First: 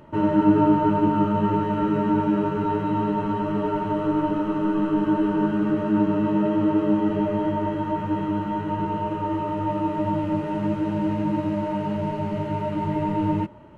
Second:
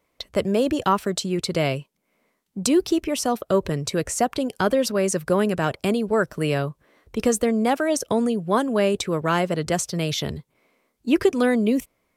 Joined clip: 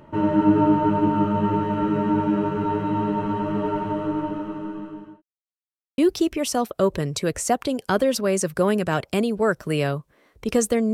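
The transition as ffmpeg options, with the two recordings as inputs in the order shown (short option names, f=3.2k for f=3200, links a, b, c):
-filter_complex "[0:a]apad=whole_dur=10.93,atrim=end=10.93,asplit=2[a][b];[a]atrim=end=5.22,asetpts=PTS-STARTPTS,afade=t=out:st=3.72:d=1.5[c];[b]atrim=start=5.22:end=5.98,asetpts=PTS-STARTPTS,volume=0[d];[1:a]atrim=start=2.69:end=7.64,asetpts=PTS-STARTPTS,afade=t=in:d=0.004:c=hsin[e];[c][d][e]concat=n=3:v=0:a=1"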